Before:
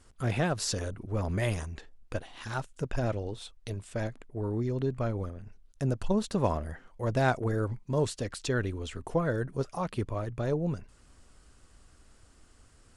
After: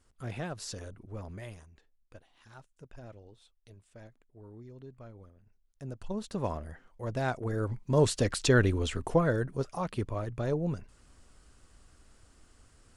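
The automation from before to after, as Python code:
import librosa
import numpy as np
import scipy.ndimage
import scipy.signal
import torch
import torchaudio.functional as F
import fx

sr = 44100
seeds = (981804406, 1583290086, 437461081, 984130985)

y = fx.gain(x, sr, db=fx.line((1.1, -9.0), (1.67, -18.0), (5.42, -18.0), (6.37, -5.5), (7.35, -5.5), (8.18, 6.5), (8.83, 6.5), (9.58, -1.0)))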